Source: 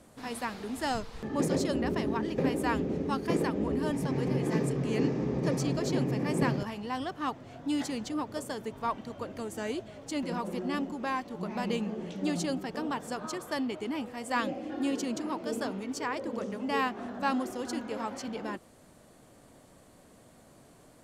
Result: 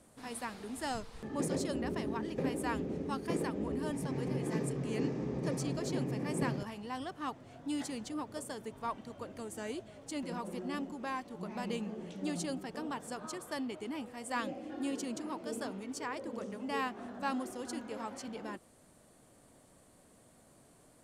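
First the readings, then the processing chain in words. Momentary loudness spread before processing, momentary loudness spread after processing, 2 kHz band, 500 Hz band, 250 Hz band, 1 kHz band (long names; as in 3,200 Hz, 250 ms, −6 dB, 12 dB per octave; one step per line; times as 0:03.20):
7 LU, 7 LU, −6.0 dB, −6.0 dB, −6.0 dB, −6.0 dB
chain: parametric band 9,200 Hz +7 dB 0.5 octaves
level −6 dB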